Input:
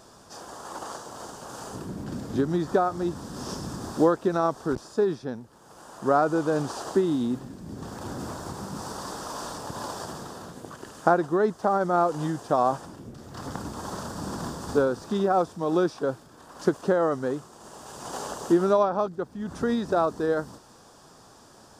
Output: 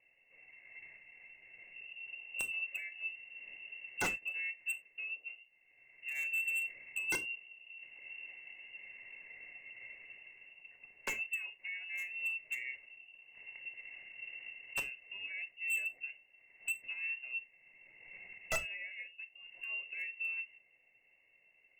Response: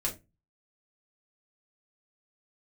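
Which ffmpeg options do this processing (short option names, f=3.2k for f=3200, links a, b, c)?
-filter_complex "[0:a]asplit=3[a][b][c];[a]bandpass=f=300:t=q:w=8,volume=0dB[d];[b]bandpass=f=870:t=q:w=8,volume=-6dB[e];[c]bandpass=f=2.24k:t=q:w=8,volume=-9dB[f];[d][e][f]amix=inputs=3:normalize=0,aeval=exprs='(mod(13.3*val(0)+1,2)-1)/13.3':c=same,lowpass=f=2.6k:t=q:w=0.5098,lowpass=f=2.6k:t=q:w=0.6013,lowpass=f=2.6k:t=q:w=0.9,lowpass=f=2.6k:t=q:w=2.563,afreqshift=-3000,volume=27.5dB,asoftclip=hard,volume=-27.5dB,equalizer=f=2.1k:t=o:w=2.5:g=-15,asplit=2[g][h];[1:a]atrim=start_sample=2205,atrim=end_sample=3969,asetrate=37926,aresample=44100[i];[h][i]afir=irnorm=-1:irlink=0,volume=-8.5dB[j];[g][j]amix=inputs=2:normalize=0,volume=6dB"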